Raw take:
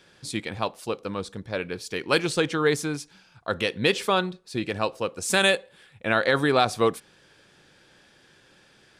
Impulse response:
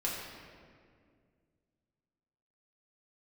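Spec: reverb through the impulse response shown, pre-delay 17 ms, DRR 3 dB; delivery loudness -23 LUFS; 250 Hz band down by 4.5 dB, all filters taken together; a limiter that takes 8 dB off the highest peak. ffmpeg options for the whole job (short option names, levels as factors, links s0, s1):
-filter_complex "[0:a]equalizer=f=250:t=o:g=-6.5,alimiter=limit=0.168:level=0:latency=1,asplit=2[s0][s1];[1:a]atrim=start_sample=2205,adelay=17[s2];[s1][s2]afir=irnorm=-1:irlink=0,volume=0.398[s3];[s0][s3]amix=inputs=2:normalize=0,volume=1.78"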